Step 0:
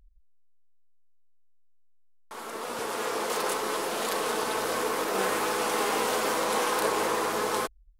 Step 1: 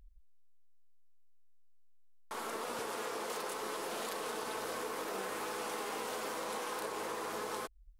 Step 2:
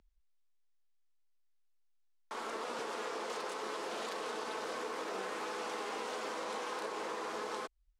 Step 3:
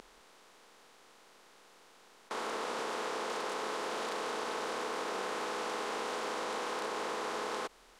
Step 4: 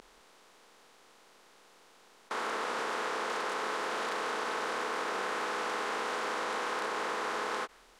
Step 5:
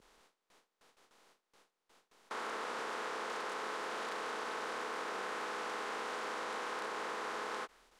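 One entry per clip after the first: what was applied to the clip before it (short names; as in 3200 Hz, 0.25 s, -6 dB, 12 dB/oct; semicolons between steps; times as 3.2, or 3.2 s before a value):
compressor 12:1, threshold -36 dBFS, peak gain reduction 14.5 dB
three-band isolator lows -14 dB, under 170 Hz, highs -20 dB, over 7800 Hz
per-bin compression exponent 0.4; gain -1.5 dB
dynamic EQ 1600 Hz, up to +6 dB, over -53 dBFS, Q 1; ending taper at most 560 dB/s
gate with hold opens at -49 dBFS; gain -6 dB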